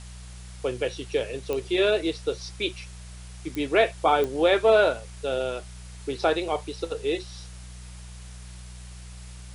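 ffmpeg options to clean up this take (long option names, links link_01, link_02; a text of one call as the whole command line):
ffmpeg -i in.wav -af "adeclick=threshold=4,bandreject=frequency=61:width_type=h:width=4,bandreject=frequency=122:width_type=h:width=4,bandreject=frequency=183:width_type=h:width=4,afwtdn=0.004" out.wav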